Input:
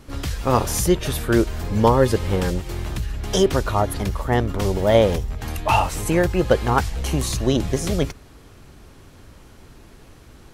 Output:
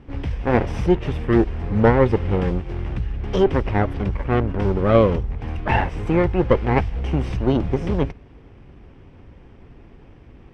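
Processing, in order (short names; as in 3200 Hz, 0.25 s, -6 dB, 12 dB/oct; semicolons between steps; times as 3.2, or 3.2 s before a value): minimum comb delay 0.36 ms; LPF 1900 Hz 12 dB/oct; notch 630 Hz, Q 16; gain +1.5 dB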